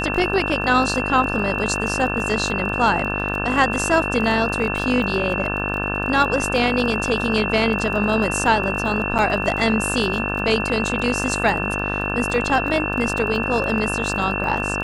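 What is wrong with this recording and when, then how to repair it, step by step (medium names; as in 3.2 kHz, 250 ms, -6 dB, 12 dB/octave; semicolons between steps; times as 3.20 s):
buzz 50 Hz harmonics 35 -26 dBFS
crackle 24 per s -27 dBFS
whine 2.7 kHz -25 dBFS
9.18–9.19 s: dropout 8 ms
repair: de-click; de-hum 50 Hz, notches 35; band-stop 2.7 kHz, Q 30; interpolate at 9.18 s, 8 ms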